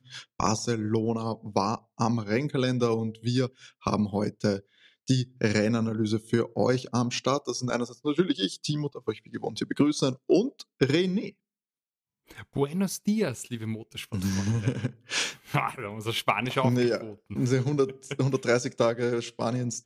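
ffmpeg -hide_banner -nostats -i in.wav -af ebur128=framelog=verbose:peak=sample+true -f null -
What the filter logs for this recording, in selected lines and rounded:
Integrated loudness:
  I:         -28.0 LUFS
  Threshold: -38.2 LUFS
Loudness range:
  LRA:         2.9 LU
  Threshold: -48.4 LUFS
  LRA low:   -30.1 LUFS
  LRA high:  -27.2 LUFS
Sample peak:
  Peak:      -10.0 dBFS
True peak:
  Peak:      -10.0 dBFS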